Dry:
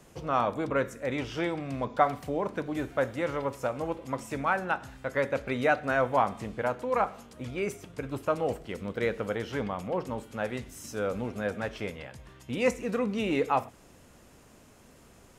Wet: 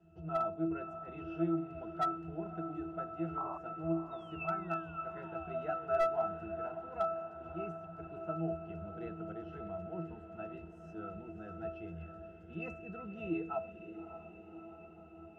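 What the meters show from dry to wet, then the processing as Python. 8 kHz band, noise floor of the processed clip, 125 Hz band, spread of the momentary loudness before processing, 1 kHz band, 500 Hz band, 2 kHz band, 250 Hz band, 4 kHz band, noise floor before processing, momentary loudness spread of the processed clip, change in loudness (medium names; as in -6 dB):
under -20 dB, -54 dBFS, -7.0 dB, 10 LU, -9.0 dB, -9.0 dB, -16.0 dB, -6.5 dB, under -15 dB, -56 dBFS, 13 LU, -8.5 dB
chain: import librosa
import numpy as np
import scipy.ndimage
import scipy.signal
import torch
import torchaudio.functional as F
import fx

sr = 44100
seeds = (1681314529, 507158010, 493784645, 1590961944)

y = fx.low_shelf(x, sr, hz=420.0, db=-5.0)
y = fx.spec_paint(y, sr, seeds[0], shape='fall', start_s=4.11, length_s=1.91, low_hz=370.0, high_hz=3800.0, level_db=-38.0)
y = fx.octave_resonator(y, sr, note='E', decay_s=0.35)
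y = fx.spec_paint(y, sr, seeds[1], shape='noise', start_s=3.37, length_s=0.21, low_hz=590.0, high_hz=1200.0, level_db=-53.0)
y = fx.echo_diffused(y, sr, ms=584, feedback_pct=68, wet_db=-11.0)
y = fx.slew_limit(y, sr, full_power_hz=17.0)
y = F.gain(torch.from_numpy(y), 9.5).numpy()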